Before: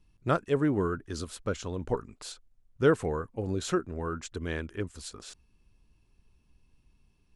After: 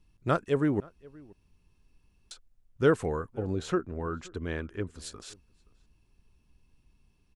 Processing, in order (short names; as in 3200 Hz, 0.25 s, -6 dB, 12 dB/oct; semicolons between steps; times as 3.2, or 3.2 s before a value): 0.8–2.31 room tone; 3.38–5.02 high shelf 4500 Hz -10.5 dB; outdoor echo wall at 90 m, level -24 dB